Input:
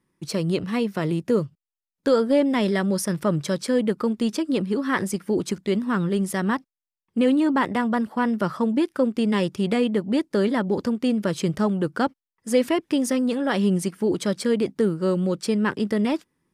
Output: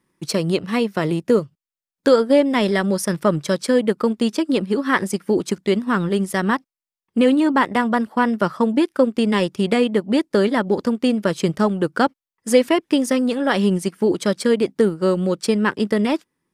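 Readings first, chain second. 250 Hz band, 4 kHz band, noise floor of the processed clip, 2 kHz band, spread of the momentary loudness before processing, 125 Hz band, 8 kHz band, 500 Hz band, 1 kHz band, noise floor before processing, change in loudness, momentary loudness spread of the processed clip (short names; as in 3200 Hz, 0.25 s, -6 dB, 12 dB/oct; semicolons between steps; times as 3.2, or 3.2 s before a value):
+3.0 dB, +5.5 dB, under -85 dBFS, +6.0 dB, 4 LU, +1.5 dB, +3.0 dB, +5.0 dB, +5.5 dB, under -85 dBFS, +4.0 dB, 5 LU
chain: transient shaper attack +2 dB, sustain -6 dB; low shelf 220 Hz -6 dB; gain +5.5 dB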